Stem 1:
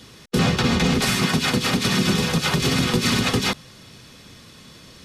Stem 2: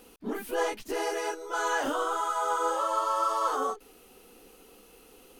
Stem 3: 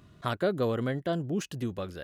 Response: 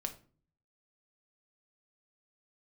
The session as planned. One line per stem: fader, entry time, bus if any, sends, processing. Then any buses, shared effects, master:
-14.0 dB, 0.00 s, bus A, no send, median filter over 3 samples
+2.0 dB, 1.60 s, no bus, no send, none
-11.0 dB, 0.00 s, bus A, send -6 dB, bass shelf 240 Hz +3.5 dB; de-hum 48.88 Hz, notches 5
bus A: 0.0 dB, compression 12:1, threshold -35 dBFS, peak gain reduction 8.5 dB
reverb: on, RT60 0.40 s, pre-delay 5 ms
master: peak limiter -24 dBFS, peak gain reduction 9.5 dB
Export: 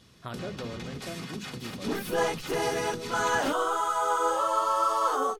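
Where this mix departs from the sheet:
stem 1: missing median filter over 3 samples; master: missing peak limiter -24 dBFS, peak gain reduction 9.5 dB

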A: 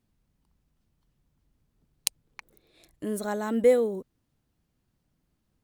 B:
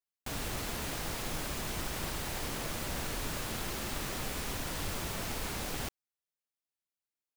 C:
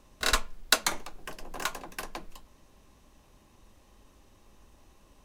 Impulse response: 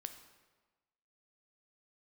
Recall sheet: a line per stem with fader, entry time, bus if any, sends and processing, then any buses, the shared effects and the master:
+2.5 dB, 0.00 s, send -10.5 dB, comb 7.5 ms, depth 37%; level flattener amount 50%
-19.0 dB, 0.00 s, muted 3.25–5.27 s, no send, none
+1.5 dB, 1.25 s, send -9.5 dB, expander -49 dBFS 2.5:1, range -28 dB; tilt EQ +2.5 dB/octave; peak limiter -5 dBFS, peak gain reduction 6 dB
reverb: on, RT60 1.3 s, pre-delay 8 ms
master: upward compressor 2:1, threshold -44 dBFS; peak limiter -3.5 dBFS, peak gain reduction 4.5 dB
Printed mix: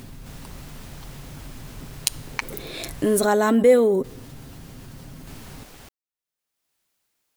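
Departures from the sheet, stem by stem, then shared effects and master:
stem B -19.0 dB -> -8.5 dB; stem C: muted

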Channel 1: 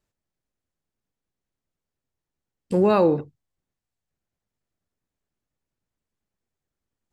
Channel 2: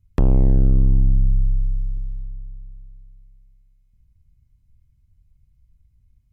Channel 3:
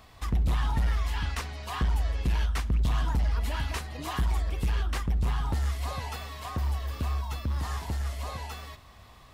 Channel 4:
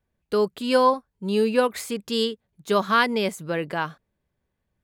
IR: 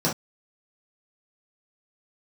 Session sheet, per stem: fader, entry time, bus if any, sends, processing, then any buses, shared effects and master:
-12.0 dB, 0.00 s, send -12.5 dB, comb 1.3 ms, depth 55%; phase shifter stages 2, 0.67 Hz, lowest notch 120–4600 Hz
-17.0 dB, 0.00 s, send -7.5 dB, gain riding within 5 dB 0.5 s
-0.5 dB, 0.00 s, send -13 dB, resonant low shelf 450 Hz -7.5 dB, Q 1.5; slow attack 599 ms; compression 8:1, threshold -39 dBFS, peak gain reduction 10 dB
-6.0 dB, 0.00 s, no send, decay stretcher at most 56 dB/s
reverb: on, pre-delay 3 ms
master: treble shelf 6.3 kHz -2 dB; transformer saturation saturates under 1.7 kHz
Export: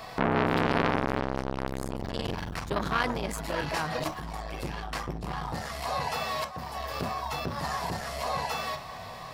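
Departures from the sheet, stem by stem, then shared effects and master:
stem 1: muted; stem 2 -17.0 dB -> -8.0 dB; stem 3 -0.5 dB -> +9.0 dB

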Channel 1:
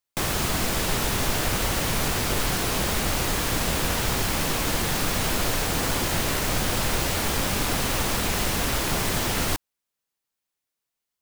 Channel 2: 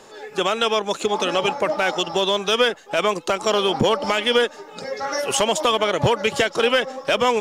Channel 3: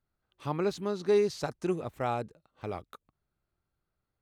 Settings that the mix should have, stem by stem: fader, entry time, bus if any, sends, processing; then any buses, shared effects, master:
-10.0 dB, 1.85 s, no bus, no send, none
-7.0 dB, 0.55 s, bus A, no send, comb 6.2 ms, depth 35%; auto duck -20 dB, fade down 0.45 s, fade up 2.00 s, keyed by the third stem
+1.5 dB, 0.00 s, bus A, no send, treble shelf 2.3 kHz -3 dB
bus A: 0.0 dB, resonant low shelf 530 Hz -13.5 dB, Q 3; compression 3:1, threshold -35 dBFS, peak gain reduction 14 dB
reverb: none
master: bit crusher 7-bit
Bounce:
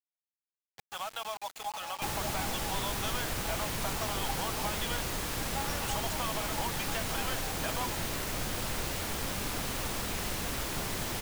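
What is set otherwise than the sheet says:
stem 2 -7.0 dB -> -16.5 dB; stem 3: muted

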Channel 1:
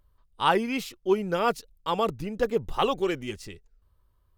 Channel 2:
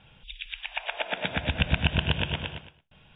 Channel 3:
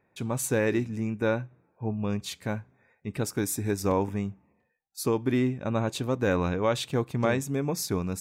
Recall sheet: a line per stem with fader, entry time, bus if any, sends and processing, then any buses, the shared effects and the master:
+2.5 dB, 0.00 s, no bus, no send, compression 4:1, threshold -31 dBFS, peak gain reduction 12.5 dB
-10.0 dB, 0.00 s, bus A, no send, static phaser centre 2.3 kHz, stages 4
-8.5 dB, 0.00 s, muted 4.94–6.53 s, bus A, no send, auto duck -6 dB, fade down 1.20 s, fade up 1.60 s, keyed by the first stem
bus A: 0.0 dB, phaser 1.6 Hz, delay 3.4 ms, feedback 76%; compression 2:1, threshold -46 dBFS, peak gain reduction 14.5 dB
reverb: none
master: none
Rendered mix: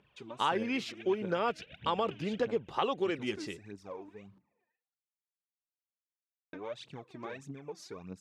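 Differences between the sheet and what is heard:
stem 2 -10.0 dB -> -17.0 dB; master: extra band-pass 170–4800 Hz

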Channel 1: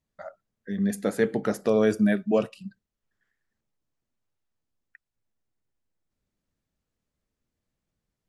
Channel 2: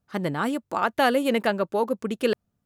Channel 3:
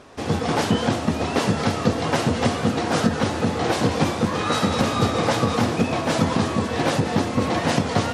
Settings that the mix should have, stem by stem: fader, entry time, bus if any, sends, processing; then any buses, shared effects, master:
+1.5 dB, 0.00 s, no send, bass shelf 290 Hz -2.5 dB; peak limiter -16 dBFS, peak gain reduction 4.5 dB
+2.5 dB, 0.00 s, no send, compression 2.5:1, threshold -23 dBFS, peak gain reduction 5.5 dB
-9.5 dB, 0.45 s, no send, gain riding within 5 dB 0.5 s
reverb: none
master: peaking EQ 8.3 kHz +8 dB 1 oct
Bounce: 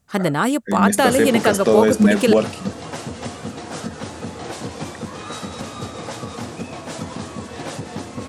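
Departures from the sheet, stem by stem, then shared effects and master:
stem 1 +1.5 dB -> +10.0 dB; stem 2 +2.5 dB -> +8.5 dB; stem 3: entry 0.45 s -> 0.80 s

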